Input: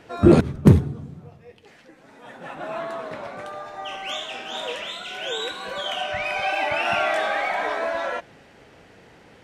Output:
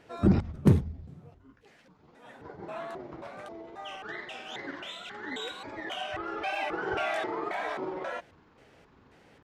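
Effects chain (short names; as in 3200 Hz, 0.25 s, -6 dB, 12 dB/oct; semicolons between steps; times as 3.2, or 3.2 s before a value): trilling pitch shifter -10 st, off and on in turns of 0.268 s; wow and flutter 25 cents; gain -8 dB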